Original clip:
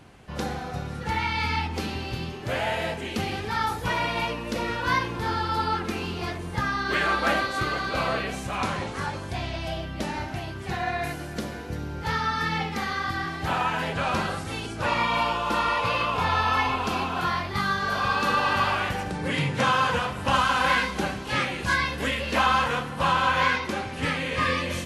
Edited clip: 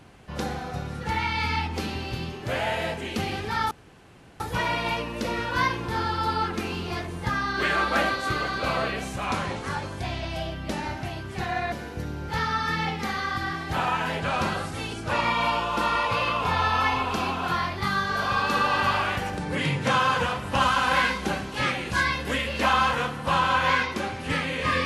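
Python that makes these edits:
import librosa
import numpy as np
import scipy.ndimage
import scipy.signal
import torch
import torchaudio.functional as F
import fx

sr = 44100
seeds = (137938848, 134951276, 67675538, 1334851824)

y = fx.edit(x, sr, fx.insert_room_tone(at_s=3.71, length_s=0.69),
    fx.cut(start_s=11.03, length_s=0.42), tone=tone)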